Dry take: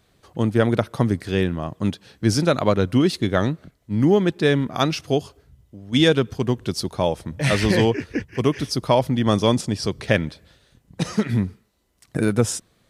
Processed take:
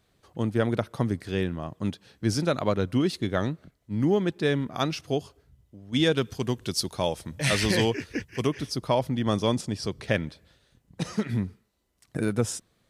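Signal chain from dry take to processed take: 6.17–8.47 s: treble shelf 2.4 kHz +9 dB; trim -6.5 dB

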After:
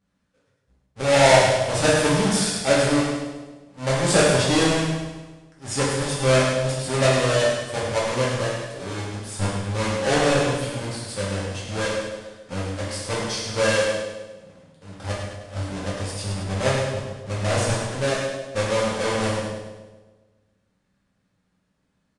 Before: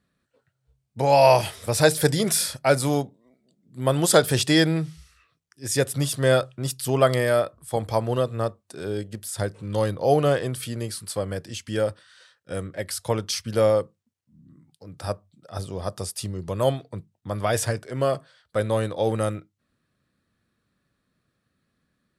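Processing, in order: square wave that keeps the level; on a send: two-band feedback delay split 730 Hz, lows 136 ms, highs 102 ms, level -7 dB; on the sum: resampled via 22.05 kHz; gated-style reverb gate 260 ms falling, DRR -6 dB; trim -10 dB

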